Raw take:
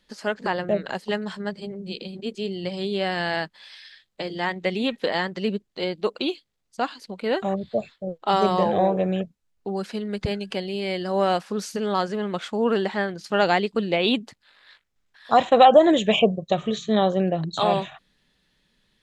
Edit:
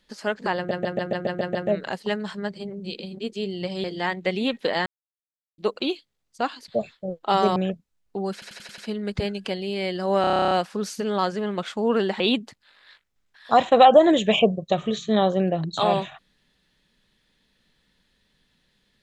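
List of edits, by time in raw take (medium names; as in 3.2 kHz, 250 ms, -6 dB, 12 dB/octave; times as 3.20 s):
0.57 s: stutter 0.14 s, 8 plays
2.86–4.23 s: delete
5.25–5.97 s: mute
7.07–7.67 s: delete
8.55–9.07 s: delete
9.84 s: stutter 0.09 s, 6 plays
11.27 s: stutter 0.03 s, 11 plays
12.96–14.00 s: delete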